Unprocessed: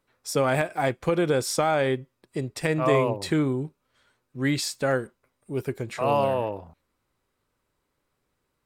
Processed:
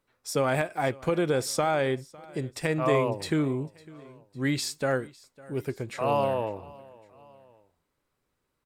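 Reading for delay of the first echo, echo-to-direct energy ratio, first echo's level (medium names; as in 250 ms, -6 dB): 554 ms, -21.5 dB, -22.5 dB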